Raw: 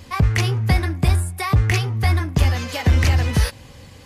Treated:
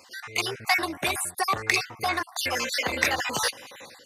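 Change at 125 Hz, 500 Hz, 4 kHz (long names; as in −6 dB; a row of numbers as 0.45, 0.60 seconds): −27.0, −3.0, +0.5 decibels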